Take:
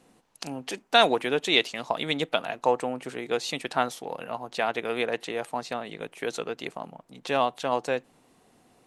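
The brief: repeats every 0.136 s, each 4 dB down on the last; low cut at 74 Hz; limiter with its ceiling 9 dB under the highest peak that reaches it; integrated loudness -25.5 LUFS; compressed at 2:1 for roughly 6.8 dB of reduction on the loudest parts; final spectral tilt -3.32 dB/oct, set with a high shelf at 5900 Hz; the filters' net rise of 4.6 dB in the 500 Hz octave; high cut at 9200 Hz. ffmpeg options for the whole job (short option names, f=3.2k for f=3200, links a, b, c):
-af "highpass=74,lowpass=9.2k,equalizer=f=500:t=o:g=5.5,highshelf=f=5.9k:g=6,acompressor=threshold=-24dB:ratio=2,alimiter=limit=-17.5dB:level=0:latency=1,aecho=1:1:136|272|408|544|680|816|952|1088|1224:0.631|0.398|0.25|0.158|0.0994|0.0626|0.0394|0.0249|0.0157,volume=4dB"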